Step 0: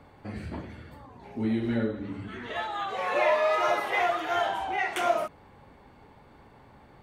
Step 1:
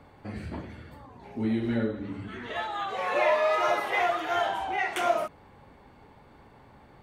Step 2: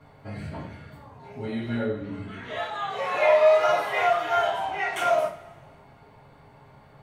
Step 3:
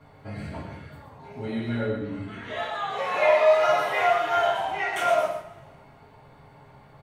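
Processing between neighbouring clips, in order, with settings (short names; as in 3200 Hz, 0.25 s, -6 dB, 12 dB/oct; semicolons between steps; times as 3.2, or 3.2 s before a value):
nothing audible
two-slope reverb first 0.29 s, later 1.7 s, from -22 dB, DRR -7 dB; gain -6 dB
echo 0.121 s -7 dB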